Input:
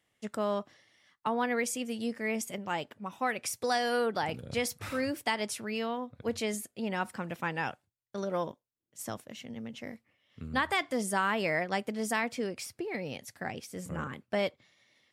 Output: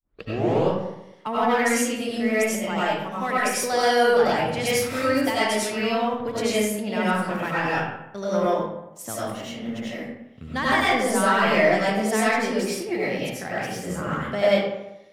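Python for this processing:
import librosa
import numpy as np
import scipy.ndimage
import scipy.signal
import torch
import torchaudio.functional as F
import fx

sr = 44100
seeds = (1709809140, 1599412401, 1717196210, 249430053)

y = fx.tape_start_head(x, sr, length_s=0.62)
y = fx.leveller(y, sr, passes=1)
y = fx.rev_freeverb(y, sr, rt60_s=0.89, hf_ratio=0.6, predelay_ms=55, drr_db=-8.5)
y = y * 10.0 ** (-1.5 / 20.0)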